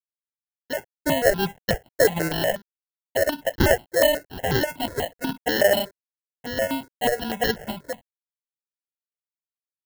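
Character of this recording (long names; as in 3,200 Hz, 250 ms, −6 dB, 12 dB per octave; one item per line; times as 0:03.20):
a quantiser's noise floor 10 bits, dither none
sample-and-hold tremolo
aliases and images of a low sample rate 1,200 Hz, jitter 0%
notches that jump at a steady rate 8.2 Hz 780–2,400 Hz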